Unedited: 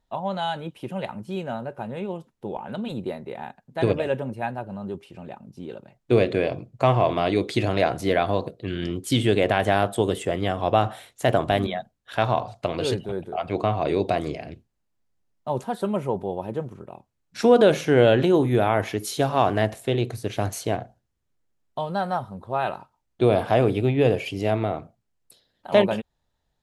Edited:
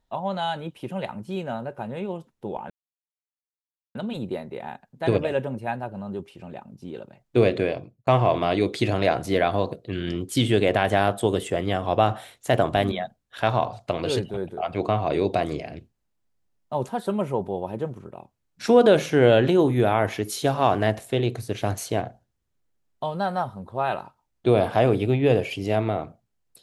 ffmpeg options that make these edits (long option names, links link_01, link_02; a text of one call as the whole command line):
ffmpeg -i in.wav -filter_complex "[0:a]asplit=3[link_01][link_02][link_03];[link_01]atrim=end=2.7,asetpts=PTS-STARTPTS,afade=type=out:start_time=2.696:duration=0.004:curve=hsin,apad=pad_dur=1.25[link_04];[link_02]atrim=start=2.7:end=6.82,asetpts=PTS-STARTPTS,afade=type=in:duration=0.004:curve=hsin,afade=type=out:start_time=3.64:duration=0.48[link_05];[link_03]atrim=start=6.82,asetpts=PTS-STARTPTS,afade=type=in:duration=0.004:curve=hsin[link_06];[link_04][link_05][link_06]concat=n=3:v=0:a=1" out.wav